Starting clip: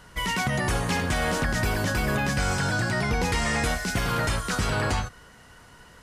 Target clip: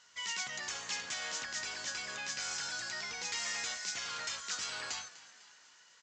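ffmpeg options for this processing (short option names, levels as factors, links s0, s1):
-filter_complex "[0:a]aderivative,asplit=7[s0][s1][s2][s3][s4][s5][s6];[s1]adelay=249,afreqshift=58,volume=0.133[s7];[s2]adelay=498,afreqshift=116,volume=0.0804[s8];[s3]adelay=747,afreqshift=174,volume=0.0479[s9];[s4]adelay=996,afreqshift=232,volume=0.0288[s10];[s5]adelay=1245,afreqshift=290,volume=0.0174[s11];[s6]adelay=1494,afreqshift=348,volume=0.0104[s12];[s0][s7][s8][s9][s10][s11][s12]amix=inputs=7:normalize=0" -ar 16000 -c:a aac -b:a 64k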